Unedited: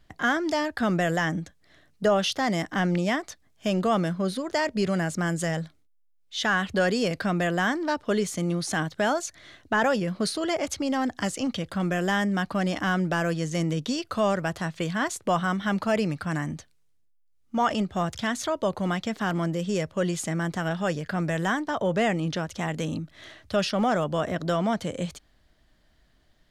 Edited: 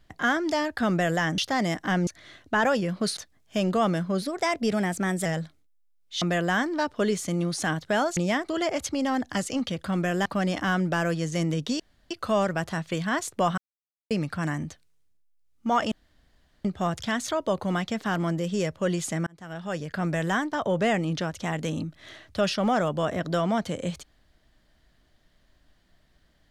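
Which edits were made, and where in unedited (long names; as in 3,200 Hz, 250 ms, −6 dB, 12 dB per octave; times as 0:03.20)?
0:01.38–0:02.26: remove
0:02.95–0:03.27: swap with 0:09.26–0:10.36
0:04.32–0:05.46: play speed 110%
0:06.42–0:07.31: remove
0:12.13–0:12.45: remove
0:13.99: splice in room tone 0.31 s
0:15.46–0:15.99: silence
0:17.80: splice in room tone 0.73 s
0:20.42–0:21.20: fade in linear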